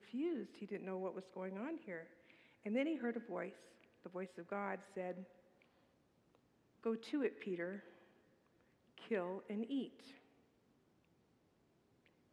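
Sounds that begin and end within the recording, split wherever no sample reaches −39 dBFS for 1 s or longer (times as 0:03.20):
0:06.86–0:07.75
0:09.11–0:09.83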